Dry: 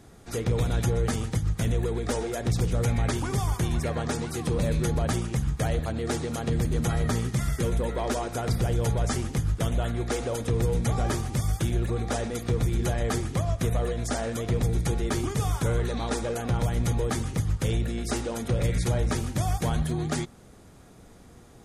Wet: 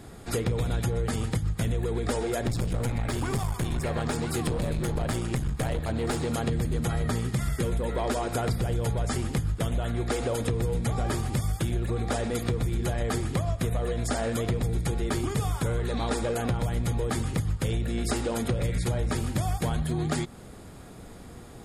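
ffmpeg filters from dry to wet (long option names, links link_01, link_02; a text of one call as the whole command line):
ffmpeg -i in.wav -filter_complex "[0:a]asettb=1/sr,asplit=3[link_01][link_02][link_03];[link_01]atrim=end=2.464[link_04];[link_02]atrim=start=2.46:end=6.27,asetpts=PTS-STARTPTS,afade=type=in:duration=0.004:curve=qsin,afade=type=out:start_time=3.806:duration=0.004:curve=qsin,aeval=exprs='clip(val(0),-1,0.0355)':channel_layout=same[link_05];[link_03]atrim=start=6.266[link_06];[link_04][link_05]acrossfade=duration=0.004:curve1=hsin:curve2=qsin[link_07];[link_07][link_06]acrossfade=duration=0.004:curve1=qsin:curve2=hsin,bandreject=frequency=6000:width=6.1,acompressor=threshold=-31dB:ratio=4,volume=6dB" out.wav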